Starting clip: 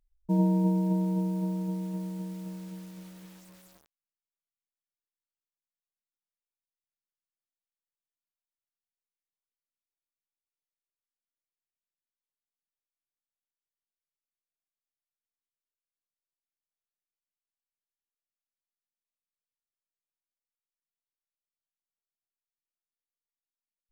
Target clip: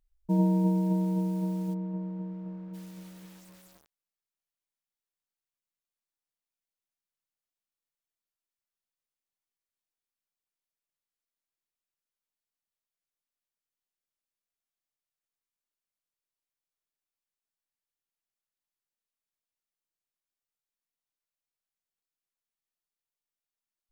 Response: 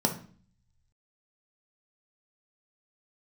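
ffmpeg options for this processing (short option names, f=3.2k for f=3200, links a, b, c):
-filter_complex "[0:a]asplit=3[a][b][c];[a]afade=t=out:st=1.73:d=0.02[d];[b]lowpass=1.3k,afade=t=in:st=1.73:d=0.02,afade=t=out:st=2.73:d=0.02[e];[c]afade=t=in:st=2.73:d=0.02[f];[d][e][f]amix=inputs=3:normalize=0"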